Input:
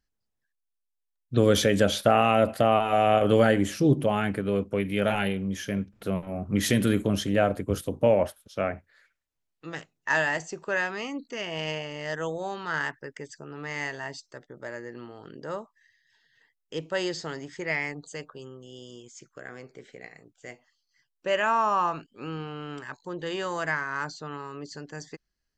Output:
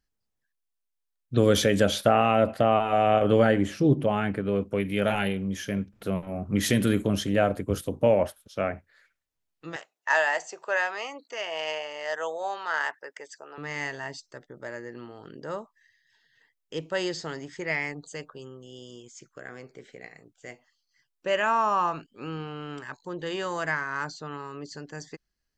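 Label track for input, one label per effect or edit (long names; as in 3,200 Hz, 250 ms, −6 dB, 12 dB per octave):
2.090000	4.610000	low-pass filter 3,200 Hz 6 dB per octave
9.760000	13.580000	high-pass with resonance 650 Hz, resonance Q 1.5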